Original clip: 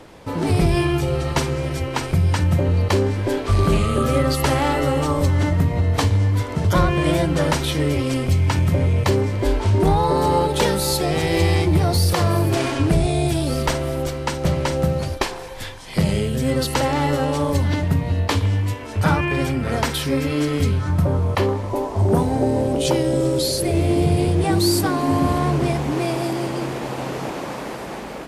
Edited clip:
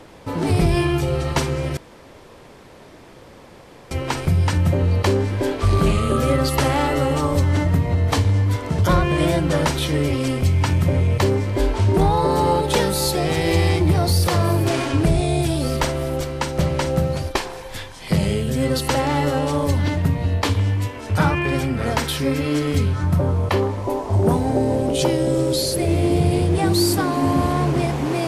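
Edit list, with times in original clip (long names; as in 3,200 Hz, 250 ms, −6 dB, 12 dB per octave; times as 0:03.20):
0:01.77: splice in room tone 2.14 s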